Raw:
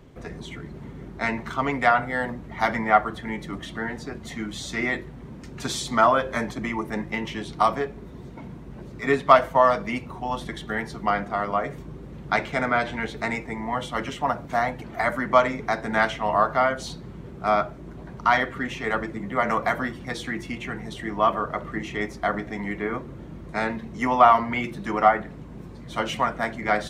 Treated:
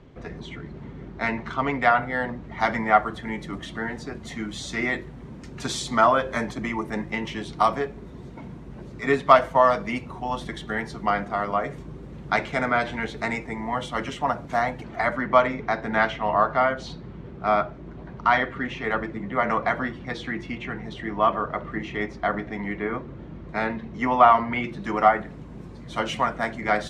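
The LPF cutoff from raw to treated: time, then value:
2.35 s 4900 Hz
2.89 s 9900 Hz
14.72 s 9900 Hz
15.21 s 4100 Hz
24.61 s 4100 Hz
25.01 s 9500 Hz

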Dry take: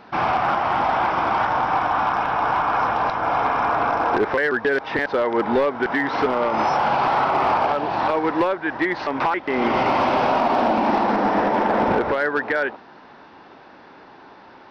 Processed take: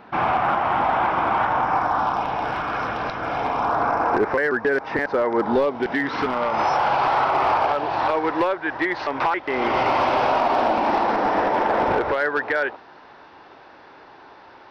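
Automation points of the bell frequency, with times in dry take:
bell -9 dB 0.82 oct
1.53 s 5100 Hz
2.58 s 910 Hz
3.3 s 910 Hz
3.92 s 3400 Hz
5.27 s 3400 Hz
5.94 s 1100 Hz
6.68 s 210 Hz

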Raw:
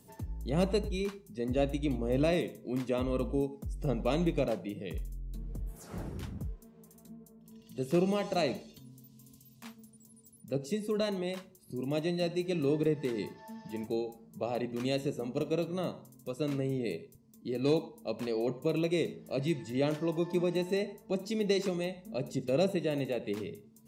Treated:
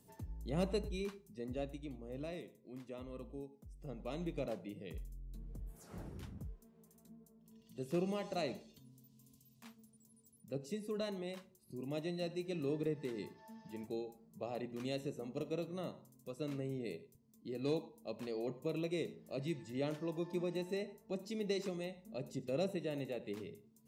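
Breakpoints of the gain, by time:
1.19 s -7 dB
1.97 s -16.5 dB
3.81 s -16.5 dB
4.57 s -8.5 dB

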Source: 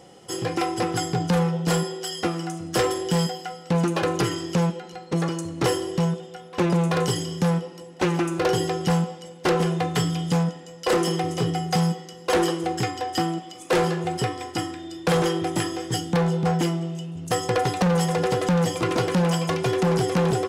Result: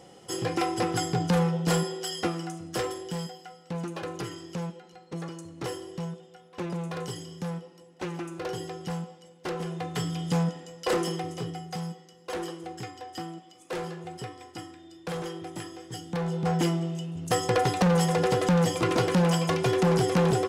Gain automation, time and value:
2.16 s -2.5 dB
3.22 s -12 dB
9.56 s -12 dB
10.59 s -1.5 dB
11.72 s -13 dB
15.92 s -13 dB
16.67 s -1.5 dB

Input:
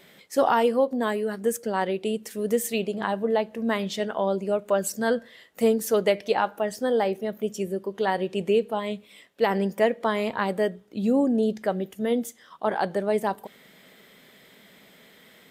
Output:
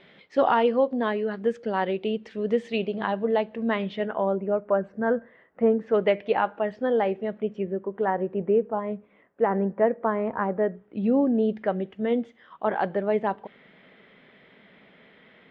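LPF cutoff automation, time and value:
LPF 24 dB/oct
3.61 s 3600 Hz
4.61 s 1700 Hz
5.66 s 1700 Hz
6.08 s 2800 Hz
7.33 s 2800 Hz
8.2 s 1600 Hz
10.56 s 1600 Hz
11.09 s 2900 Hz

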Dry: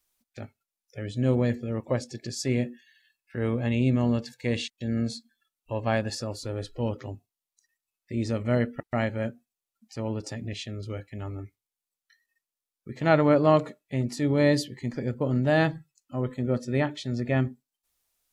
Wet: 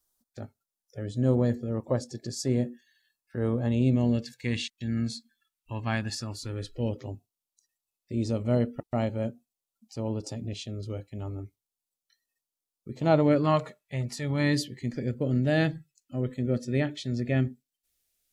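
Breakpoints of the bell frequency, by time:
bell -13.5 dB 0.86 oct
3.69 s 2400 Hz
4.56 s 530 Hz
6.41 s 530 Hz
7.13 s 1800 Hz
13.18 s 1800 Hz
13.62 s 290 Hz
14.23 s 290 Hz
14.69 s 1000 Hz

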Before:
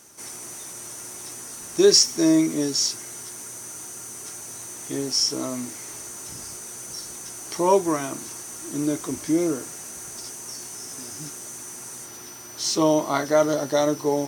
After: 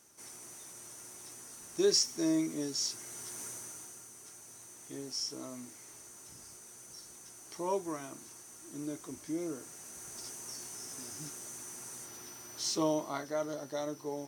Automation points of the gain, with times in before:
2.74 s -12 dB
3.45 s -5 dB
4.11 s -15 dB
9.4 s -15 dB
10.26 s -8 dB
12.58 s -8 dB
13.33 s -16 dB

